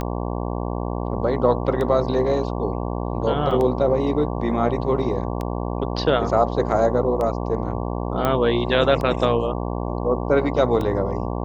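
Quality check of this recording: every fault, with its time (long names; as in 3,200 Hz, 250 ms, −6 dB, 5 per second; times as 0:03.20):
mains buzz 60 Hz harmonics 19 −26 dBFS
scratch tick 33 1/3 rpm −15 dBFS
0:03.51: drop-out 3.6 ms
0:08.25: click −8 dBFS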